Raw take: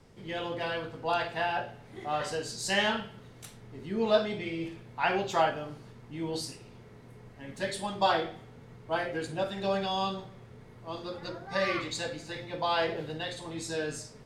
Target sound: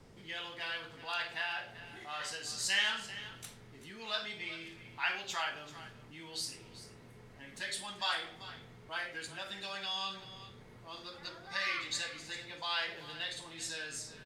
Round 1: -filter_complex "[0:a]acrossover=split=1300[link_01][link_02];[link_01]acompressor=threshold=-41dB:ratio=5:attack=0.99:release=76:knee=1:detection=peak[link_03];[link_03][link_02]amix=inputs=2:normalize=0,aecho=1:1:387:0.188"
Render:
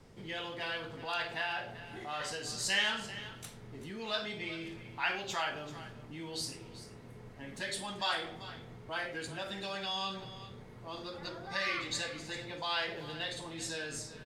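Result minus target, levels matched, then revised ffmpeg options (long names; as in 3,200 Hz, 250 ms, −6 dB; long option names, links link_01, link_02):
downward compressor: peak gain reduction −8.5 dB
-filter_complex "[0:a]acrossover=split=1300[link_01][link_02];[link_01]acompressor=threshold=-51.5dB:ratio=5:attack=0.99:release=76:knee=1:detection=peak[link_03];[link_03][link_02]amix=inputs=2:normalize=0,aecho=1:1:387:0.188"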